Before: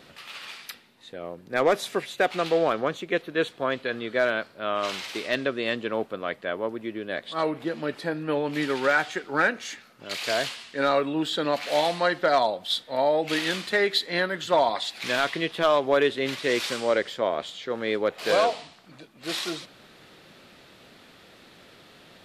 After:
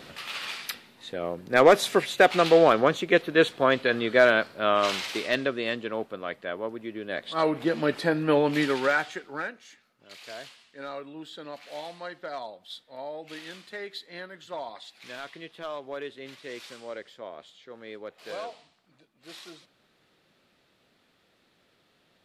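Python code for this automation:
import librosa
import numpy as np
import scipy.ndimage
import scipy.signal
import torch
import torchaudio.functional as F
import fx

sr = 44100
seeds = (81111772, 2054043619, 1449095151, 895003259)

y = fx.gain(x, sr, db=fx.line((4.66, 5.0), (5.9, -3.5), (6.9, -3.5), (7.74, 4.5), (8.45, 4.5), (9.24, -6.5), (9.6, -15.0)))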